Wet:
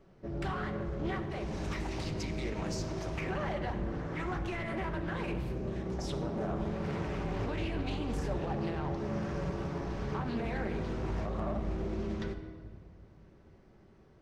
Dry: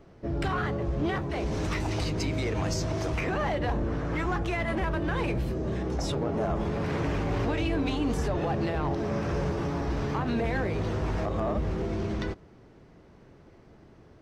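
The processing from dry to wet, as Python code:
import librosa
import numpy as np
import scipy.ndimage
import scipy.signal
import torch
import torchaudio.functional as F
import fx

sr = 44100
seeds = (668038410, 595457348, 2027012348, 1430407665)

y = fx.room_shoebox(x, sr, seeds[0], volume_m3=2800.0, walls='mixed', distance_m=1.1)
y = fx.doppler_dist(y, sr, depth_ms=0.28)
y = y * librosa.db_to_amplitude(-8.0)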